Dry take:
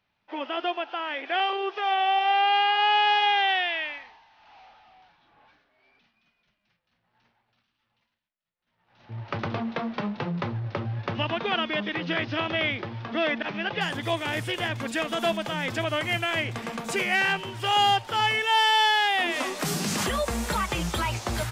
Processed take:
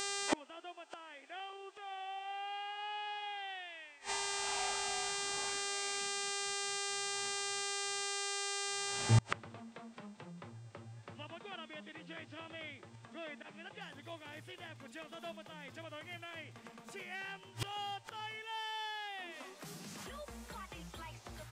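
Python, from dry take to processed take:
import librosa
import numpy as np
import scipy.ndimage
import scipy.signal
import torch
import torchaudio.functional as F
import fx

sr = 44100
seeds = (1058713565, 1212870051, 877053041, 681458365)

y = fx.dmg_buzz(x, sr, base_hz=400.0, harmonics=22, level_db=-50.0, tilt_db=-1, odd_only=False)
y = fx.gate_flip(y, sr, shuts_db=-27.0, range_db=-32)
y = y * 10.0 ** (11.0 / 20.0)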